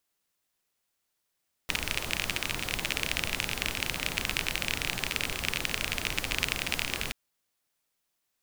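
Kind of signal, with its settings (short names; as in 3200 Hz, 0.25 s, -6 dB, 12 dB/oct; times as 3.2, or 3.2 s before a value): rain from filtered ticks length 5.43 s, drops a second 31, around 2500 Hz, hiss -2.5 dB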